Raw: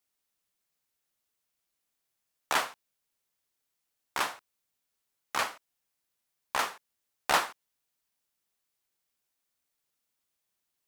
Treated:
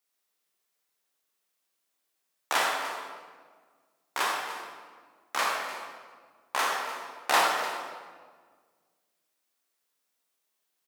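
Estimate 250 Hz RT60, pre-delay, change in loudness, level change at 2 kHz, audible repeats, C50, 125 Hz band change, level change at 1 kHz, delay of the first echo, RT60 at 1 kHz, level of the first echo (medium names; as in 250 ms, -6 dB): 2.1 s, 23 ms, +2.5 dB, +4.0 dB, 1, 0.0 dB, no reading, +4.5 dB, 298 ms, 1.5 s, -14.0 dB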